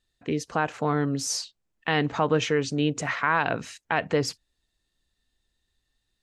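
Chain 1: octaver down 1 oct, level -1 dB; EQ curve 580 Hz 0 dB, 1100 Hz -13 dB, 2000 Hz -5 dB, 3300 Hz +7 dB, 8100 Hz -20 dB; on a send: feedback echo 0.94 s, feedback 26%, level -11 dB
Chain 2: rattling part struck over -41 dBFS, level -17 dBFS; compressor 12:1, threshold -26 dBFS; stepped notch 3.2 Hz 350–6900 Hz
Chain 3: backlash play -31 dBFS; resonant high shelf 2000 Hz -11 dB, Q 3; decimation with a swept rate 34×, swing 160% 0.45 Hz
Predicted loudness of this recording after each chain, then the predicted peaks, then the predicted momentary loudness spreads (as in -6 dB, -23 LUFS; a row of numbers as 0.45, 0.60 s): -27.5, -33.0, -26.0 LUFS; -9.5, -15.0, -7.5 dBFS; 15, 6, 9 LU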